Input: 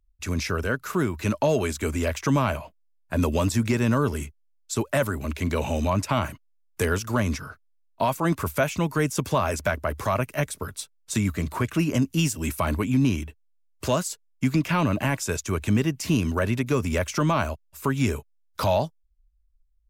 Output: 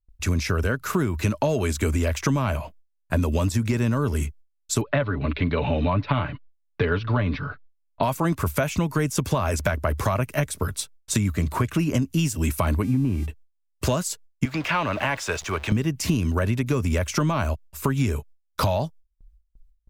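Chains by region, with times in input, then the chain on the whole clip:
0:04.81–0:08.03: elliptic low-pass filter 4,100 Hz, stop band 50 dB + comb filter 6.9 ms, depth 51%
0:12.82–0:13.25: low-pass filter 1,500 Hz + hum with harmonics 400 Hz, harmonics 36, −52 dBFS −1 dB per octave
0:14.45–0:15.72: converter with a step at zero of −35 dBFS + three-way crossover with the lows and the highs turned down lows −15 dB, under 480 Hz, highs −15 dB, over 4,800 Hz
whole clip: noise gate with hold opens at −56 dBFS; low-shelf EQ 130 Hz +8.5 dB; downward compressor, threshold −24 dBFS; level +5 dB

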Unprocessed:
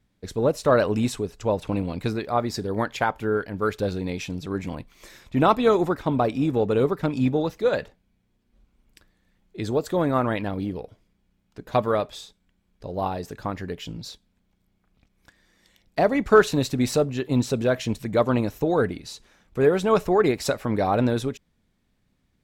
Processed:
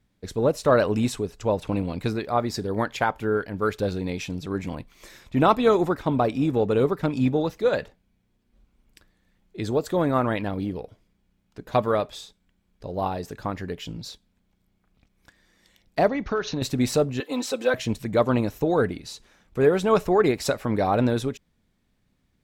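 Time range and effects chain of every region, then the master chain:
0:16.08–0:16.62: Chebyshev low-pass filter 6,500 Hz, order 8 + downward compressor 4 to 1, threshold −23 dBFS
0:17.20–0:17.74: high-pass filter 470 Hz + comb filter 3.9 ms, depth 89%
whole clip: no processing

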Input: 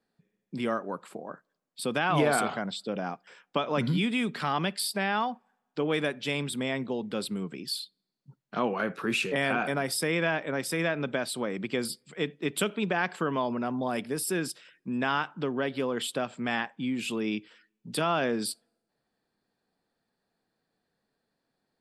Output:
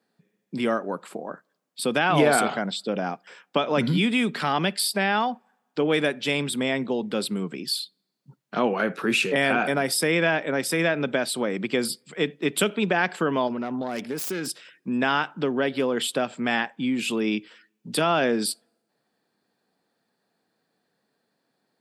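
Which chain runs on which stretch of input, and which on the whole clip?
0:13.47–0:14.47: phase distortion by the signal itself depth 0.098 ms + dynamic equaliser 6,300 Hz, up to +4 dB, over −56 dBFS, Q 3.7 + downward compressor 3 to 1, threshold −32 dBFS
whole clip: high-pass filter 150 Hz; dynamic equaliser 1,100 Hz, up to −4 dB, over −45 dBFS, Q 3.4; level +6 dB

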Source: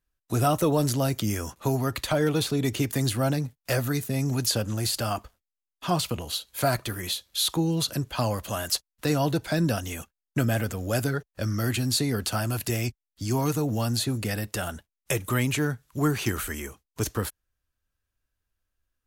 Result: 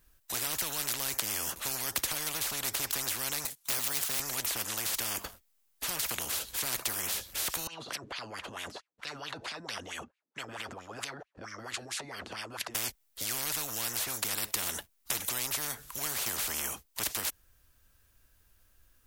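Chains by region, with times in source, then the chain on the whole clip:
0:03.45–0:04.20: RIAA equalisation recording + bad sample-rate conversion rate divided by 2×, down filtered, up hold
0:07.67–0:12.75: low-pass filter 8,100 Hz + transient designer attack −6 dB, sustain +9 dB + LFO wah 4.5 Hz 230–2,700 Hz, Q 3.8
whole clip: high-shelf EQ 9,000 Hz +8.5 dB; every bin compressed towards the loudest bin 10 to 1; level −6.5 dB

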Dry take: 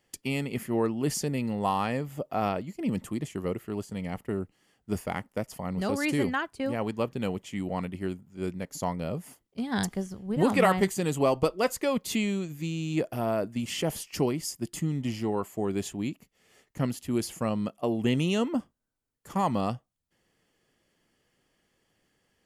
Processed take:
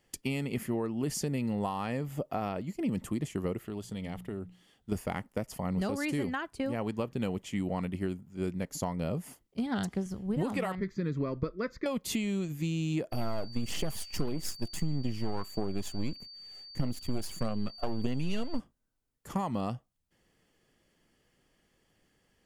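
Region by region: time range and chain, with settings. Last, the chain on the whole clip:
0:03.65–0:04.92: parametric band 3,500 Hz +10.5 dB 0.33 octaves + mains-hum notches 60/120/180 Hz + downward compressor 4 to 1, threshold −36 dBFS
0:09.66–0:10.06: high-pass filter 63 Hz + high-shelf EQ 10,000 Hz −10.5 dB + highs frequency-modulated by the lows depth 0.13 ms
0:10.75–0:11.86: high-frequency loss of the air 250 metres + phaser with its sweep stopped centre 2,900 Hz, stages 6
0:13.11–0:18.58: gain on one half-wave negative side −12 dB + phase shifter 1.6 Hz, delay 1.5 ms, feedback 37% + steady tone 4,600 Hz −46 dBFS
whole clip: parametric band 93 Hz −3.5 dB 1.6 octaves; downward compressor 10 to 1, threshold −30 dBFS; low-shelf EQ 170 Hz +8 dB

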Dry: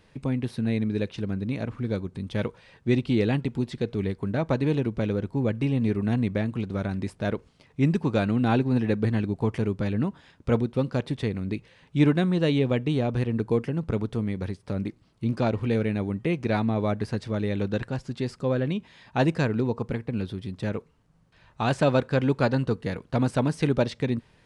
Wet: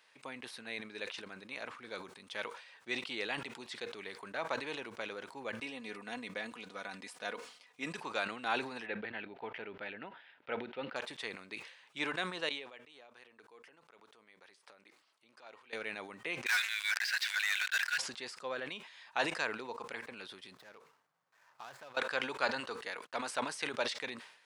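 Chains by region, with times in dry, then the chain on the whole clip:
0:05.61–0:07.96: parametric band 1,400 Hz −3 dB 2.2 octaves + comb filter 4.1 ms, depth 53%
0:08.86–0:10.96: low-pass filter 3,100 Hz 24 dB per octave + parametric band 1,100 Hz −15 dB 0.2 octaves
0:12.49–0:15.73: downward compressor 2 to 1, threshold −47 dBFS + bass and treble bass −7 dB, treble −1 dB + shaped tremolo triangle 4.7 Hz, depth 55%
0:16.46–0:17.98: linear-phase brick-wall high-pass 1,400 Hz + high-frequency loss of the air 120 metres + leveller curve on the samples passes 5
0:20.54–0:21.97: running median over 15 samples + parametric band 130 Hz +8.5 dB 0.43 octaves + downward compressor 5 to 1, threshold −36 dBFS
0:22.60–0:23.36: de-essing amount 90% + noise gate −49 dBFS, range −50 dB + parametric band 150 Hz −13 dB 0.32 octaves
whole clip: high-pass filter 1,000 Hz 12 dB per octave; level that may fall only so fast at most 84 dB per second; level −2 dB

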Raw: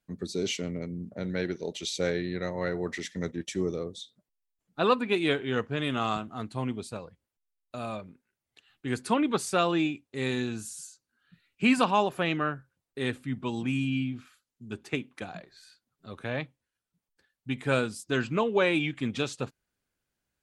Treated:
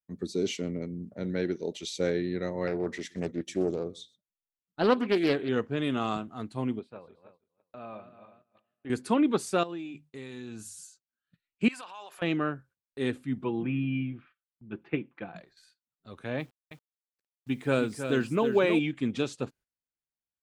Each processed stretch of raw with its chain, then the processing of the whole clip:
0:02.67–0:05.49: single-tap delay 126 ms −23.5 dB + highs frequency-modulated by the lows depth 0.37 ms
0:06.79–0:08.90: feedback delay that plays each chunk backwards 163 ms, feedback 63%, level −9.5 dB + high-pass filter 340 Hz 6 dB per octave + high-frequency loss of the air 470 metres
0:09.63–0:10.84: mains-hum notches 50/100/150 Hz + downward compressor 12 to 1, threshold −34 dBFS
0:11.68–0:12.22: high-pass filter 920 Hz + downward compressor 2.5 to 1, threshold −41 dBFS + transient designer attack −5 dB, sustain +4 dB
0:13.44–0:15.36: low-pass filter 2,700 Hz 24 dB per octave + comb filter 5.9 ms, depth 44%
0:16.39–0:18.79: single-tap delay 319 ms −8 dB + bit-depth reduction 10 bits, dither none
whole clip: noise gate −54 dBFS, range −16 dB; dynamic equaliser 310 Hz, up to +7 dB, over −40 dBFS, Q 0.75; level −4 dB

